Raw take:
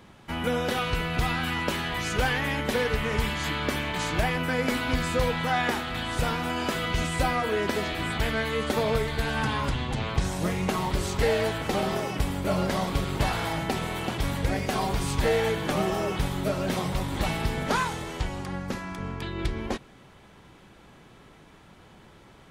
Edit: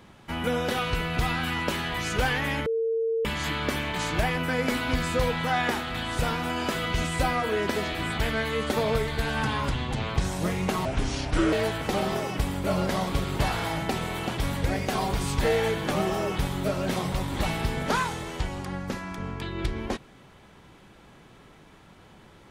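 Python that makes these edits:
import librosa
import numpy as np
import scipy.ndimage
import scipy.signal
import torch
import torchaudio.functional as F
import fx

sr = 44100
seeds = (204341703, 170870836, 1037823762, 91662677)

y = fx.edit(x, sr, fx.bleep(start_s=2.66, length_s=0.59, hz=453.0, db=-23.0),
    fx.speed_span(start_s=10.85, length_s=0.48, speed=0.71), tone=tone)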